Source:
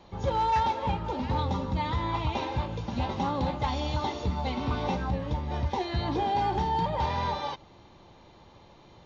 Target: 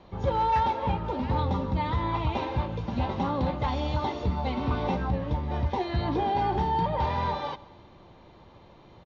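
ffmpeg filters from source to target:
ffmpeg -i in.wav -af "lowpass=6100,highshelf=frequency=3700:gain=-8.5,bandreject=frequency=840:width=23,aecho=1:1:131|262|393|524:0.0794|0.0461|0.0267|0.0155,volume=2dB" out.wav

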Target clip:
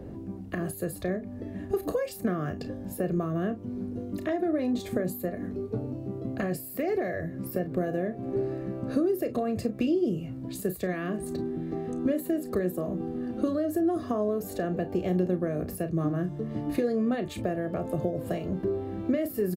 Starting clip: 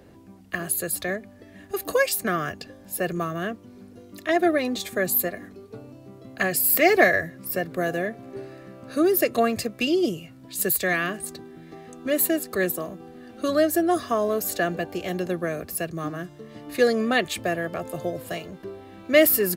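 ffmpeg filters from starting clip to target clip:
ffmpeg -i in.wav -af "alimiter=limit=-15.5dB:level=0:latency=1:release=22,acompressor=threshold=-33dB:ratio=6,tiltshelf=frequency=860:gain=9.5,aecho=1:1:33|49:0.282|0.126,volume=2.5dB" out.wav

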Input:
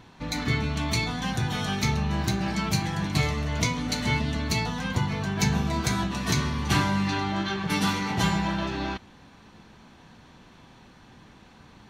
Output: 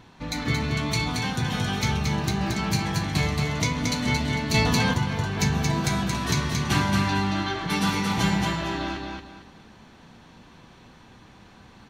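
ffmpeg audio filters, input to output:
ffmpeg -i in.wav -filter_complex "[0:a]asplit=2[link_01][link_02];[link_02]aecho=0:1:226|452|678|904:0.631|0.177|0.0495|0.0139[link_03];[link_01][link_03]amix=inputs=2:normalize=0,asettb=1/sr,asplit=3[link_04][link_05][link_06];[link_04]atrim=end=4.544[link_07];[link_05]atrim=start=4.54:end=4.94,asetpts=PTS-STARTPTS,afade=type=in:duration=0.004:curve=qsin,afade=type=out:start_time=0.396:duration=0.004:curve=qsin,acontrast=54[link_08];[link_06]atrim=start=4.936[link_09];[link_07][link_08]acrossfade=duration=0.004:curve1=hsin:curve2=qsin[link_10];[link_10][link_09]acrossfade=duration=0.004:curve1=qsin:curve2=hsin" out.wav

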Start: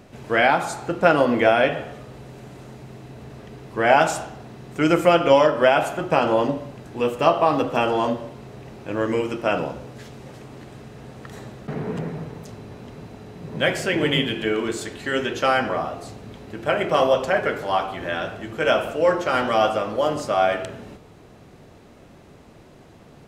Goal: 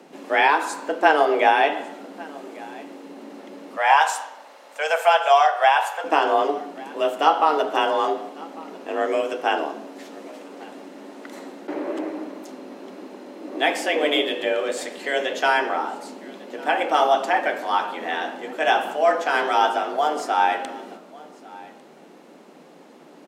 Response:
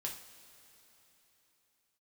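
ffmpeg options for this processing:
-filter_complex "[0:a]asettb=1/sr,asplit=3[link_01][link_02][link_03];[link_01]atrim=end=3.764[link_04];[link_02]atrim=start=3.76:end=6.04,asetpts=PTS-STARTPTS,afade=type=in:duration=0.004:curve=qsin,afade=type=out:start_time=2.276:duration=0.004:curve=qsin,highpass=frequency=420:width=0.5412,highpass=frequency=420:width=1.3066[link_05];[link_03]atrim=start=6.036[link_06];[link_04][link_05]acrossfade=duration=0.004:curve1=hsin:curve2=qsin[link_07];[link_07][link_06]acrossfade=duration=0.004:curve1=qsin:curve2=hsin,afreqshift=150,aecho=1:1:1149:0.0794"

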